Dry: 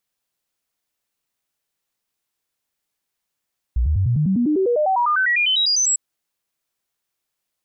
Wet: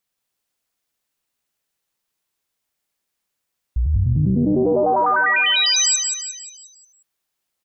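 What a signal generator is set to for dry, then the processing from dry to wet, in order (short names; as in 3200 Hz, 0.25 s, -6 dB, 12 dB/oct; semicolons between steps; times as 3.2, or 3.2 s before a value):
stepped sine 60.1 Hz up, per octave 3, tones 22, 0.10 s, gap 0.00 s -15 dBFS
on a send: feedback echo 0.178 s, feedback 46%, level -5 dB; on the sum: Doppler distortion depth 0.49 ms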